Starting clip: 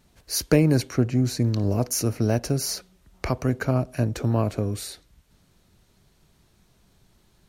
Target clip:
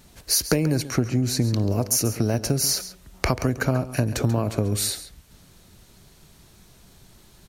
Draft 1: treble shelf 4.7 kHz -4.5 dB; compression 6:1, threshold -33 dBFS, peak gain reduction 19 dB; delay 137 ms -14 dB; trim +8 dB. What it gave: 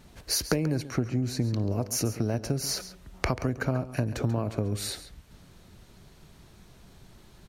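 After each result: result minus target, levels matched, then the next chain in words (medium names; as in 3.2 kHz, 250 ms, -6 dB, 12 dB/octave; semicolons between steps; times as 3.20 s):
compression: peak gain reduction +5.5 dB; 8 kHz band -2.5 dB
treble shelf 4.7 kHz -4.5 dB; compression 6:1, threshold -26.5 dBFS, peak gain reduction 13.5 dB; delay 137 ms -14 dB; trim +8 dB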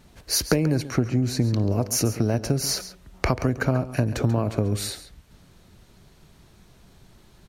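8 kHz band -3.0 dB
treble shelf 4.7 kHz +5.5 dB; compression 6:1, threshold -26.5 dBFS, peak gain reduction 13.5 dB; delay 137 ms -14 dB; trim +8 dB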